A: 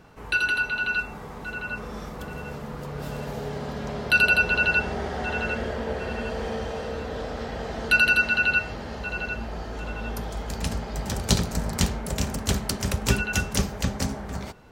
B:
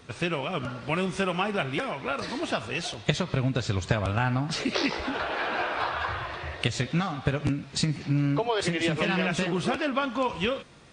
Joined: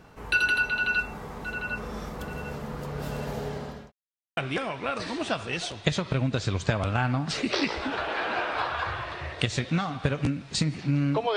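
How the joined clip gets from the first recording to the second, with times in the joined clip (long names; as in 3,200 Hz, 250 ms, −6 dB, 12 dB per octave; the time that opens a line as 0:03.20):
A
0:03.28–0:03.92: fade out equal-power
0:03.92–0:04.37: silence
0:04.37: continue with B from 0:01.59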